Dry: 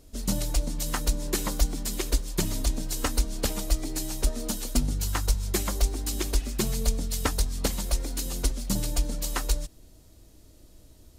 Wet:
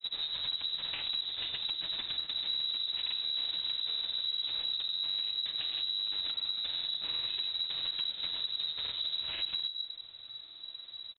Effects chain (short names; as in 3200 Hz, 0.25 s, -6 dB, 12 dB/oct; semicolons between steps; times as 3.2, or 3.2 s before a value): CVSD 32 kbps; on a send at -6 dB: reverb RT60 0.45 s, pre-delay 6 ms; on the sum: limiter -20.5 dBFS, peak gain reduction 9 dB; grains, pitch spread up and down by 0 st; compressor, threshold -34 dBFS, peak gain reduction 9.5 dB; inverted band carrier 3900 Hz